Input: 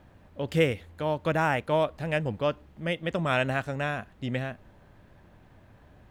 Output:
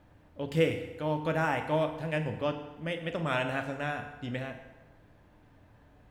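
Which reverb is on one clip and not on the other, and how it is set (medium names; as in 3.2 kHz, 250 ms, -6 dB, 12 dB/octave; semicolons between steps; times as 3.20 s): FDN reverb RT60 1.2 s, low-frequency decay 0.8×, high-frequency decay 0.75×, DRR 4.5 dB; trim -5 dB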